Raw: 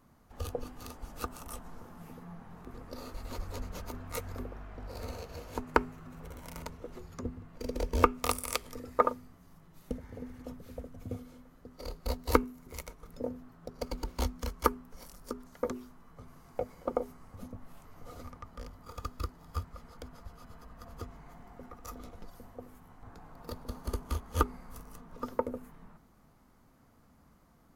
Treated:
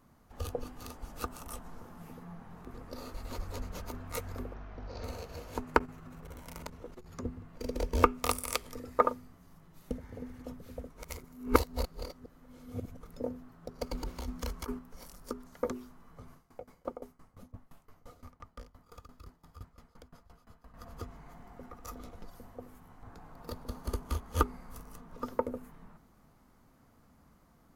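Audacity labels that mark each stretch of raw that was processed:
4.540000	5.040000	Chebyshev low-pass 6300 Hz, order 5
5.780000	7.130000	core saturation saturates under 300 Hz
10.900000	13.010000	reverse
13.920000	14.790000	negative-ratio compressor -36 dBFS
16.330000	20.740000	dB-ramp tremolo decaying 5.8 Hz, depth 21 dB

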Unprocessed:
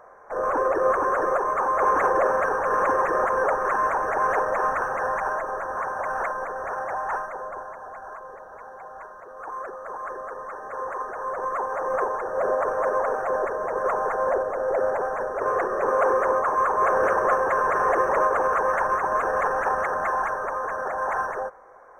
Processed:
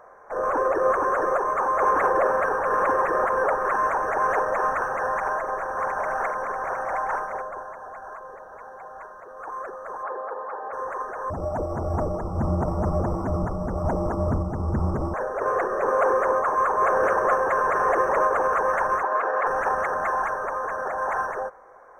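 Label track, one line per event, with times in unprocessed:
1.910000	3.740000	bell 6800 Hz -6.5 dB 0.35 oct
5.070000	7.420000	tapped delay 45/86/401/713/815 ms -17/-13.5/-13.5/-6/-16.5 dB
10.030000	10.730000	speaker cabinet 260–4000 Hz, peaks and dips at 470 Hz +5 dB, 840 Hz +8 dB, 2000 Hz -5 dB
11.300000	15.140000	frequency shift -440 Hz
19.030000	19.470000	three-band isolator lows -23 dB, under 280 Hz, highs -22 dB, over 4500 Hz

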